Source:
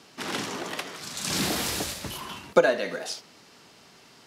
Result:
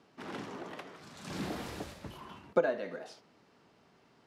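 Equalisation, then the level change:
high-shelf EQ 2,100 Hz −9.5 dB
high-shelf EQ 4,200 Hz −8 dB
−7.5 dB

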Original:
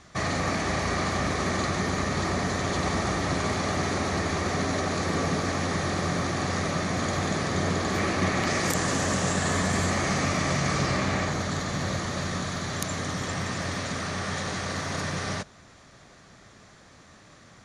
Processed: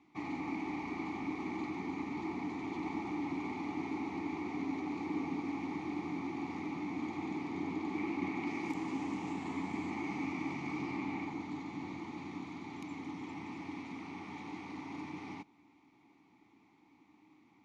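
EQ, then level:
formant filter u
+1.0 dB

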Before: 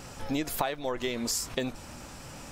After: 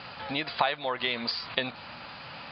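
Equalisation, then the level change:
high-pass filter 190 Hz 12 dB per octave
Chebyshev low-pass filter 4,800 Hz, order 8
parametric band 330 Hz −14 dB 1.7 octaves
+8.5 dB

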